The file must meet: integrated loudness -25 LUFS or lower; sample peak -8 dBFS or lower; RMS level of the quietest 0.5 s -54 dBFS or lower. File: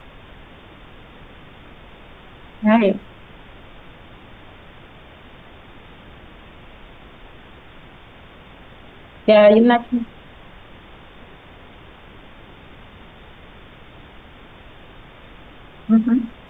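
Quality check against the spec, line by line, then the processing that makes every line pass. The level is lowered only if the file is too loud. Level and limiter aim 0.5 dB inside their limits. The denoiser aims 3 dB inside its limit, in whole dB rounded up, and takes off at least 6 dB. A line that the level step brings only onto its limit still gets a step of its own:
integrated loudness -16.0 LUFS: fail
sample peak -2.5 dBFS: fail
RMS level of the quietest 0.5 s -43 dBFS: fail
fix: denoiser 6 dB, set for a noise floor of -43 dBFS; gain -9.5 dB

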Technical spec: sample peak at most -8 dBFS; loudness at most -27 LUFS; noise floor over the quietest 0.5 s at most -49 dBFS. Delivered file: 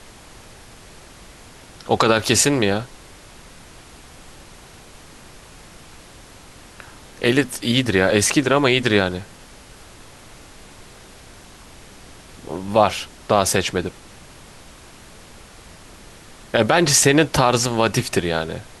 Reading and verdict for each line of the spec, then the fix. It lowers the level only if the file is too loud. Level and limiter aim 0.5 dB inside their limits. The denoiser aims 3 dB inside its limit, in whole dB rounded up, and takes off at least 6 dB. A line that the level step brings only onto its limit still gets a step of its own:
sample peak -2.5 dBFS: fail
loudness -18.0 LUFS: fail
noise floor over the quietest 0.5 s -43 dBFS: fail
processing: gain -9.5 dB

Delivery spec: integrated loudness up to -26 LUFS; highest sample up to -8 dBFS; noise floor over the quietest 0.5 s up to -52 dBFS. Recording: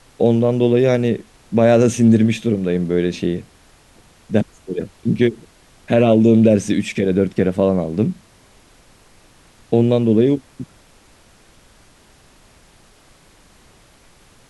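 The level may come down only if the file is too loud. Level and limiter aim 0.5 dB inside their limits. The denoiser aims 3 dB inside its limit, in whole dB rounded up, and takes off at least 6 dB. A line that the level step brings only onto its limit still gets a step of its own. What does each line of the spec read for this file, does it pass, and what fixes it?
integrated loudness -17.0 LUFS: fail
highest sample -2.5 dBFS: fail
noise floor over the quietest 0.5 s -50 dBFS: fail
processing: gain -9.5 dB

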